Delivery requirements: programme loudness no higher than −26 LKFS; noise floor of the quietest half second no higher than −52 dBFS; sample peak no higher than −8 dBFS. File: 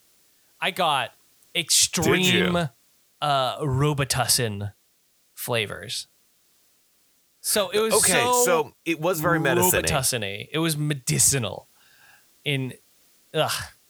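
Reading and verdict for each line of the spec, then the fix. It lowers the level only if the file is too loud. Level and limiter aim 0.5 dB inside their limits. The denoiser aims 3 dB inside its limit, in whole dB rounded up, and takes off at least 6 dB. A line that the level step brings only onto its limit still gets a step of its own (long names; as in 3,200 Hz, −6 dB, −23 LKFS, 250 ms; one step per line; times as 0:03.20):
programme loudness −22.5 LKFS: out of spec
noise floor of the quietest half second −64 dBFS: in spec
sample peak −6.0 dBFS: out of spec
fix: level −4 dB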